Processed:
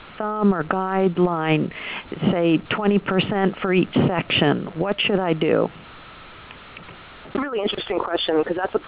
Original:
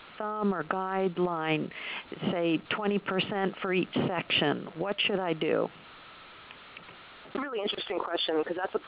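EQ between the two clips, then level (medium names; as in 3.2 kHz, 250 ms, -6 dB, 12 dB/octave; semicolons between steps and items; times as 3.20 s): distance through air 120 m; bass shelf 140 Hz +11 dB; +8.0 dB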